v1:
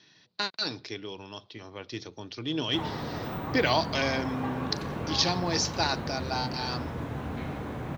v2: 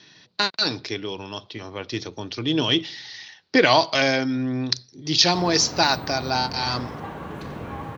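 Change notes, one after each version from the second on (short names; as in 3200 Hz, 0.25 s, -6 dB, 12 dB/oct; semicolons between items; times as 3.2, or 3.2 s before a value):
speech +8.5 dB; background: entry +2.60 s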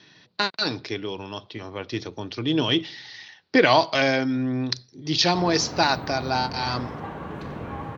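master: add high shelf 5800 Hz -11.5 dB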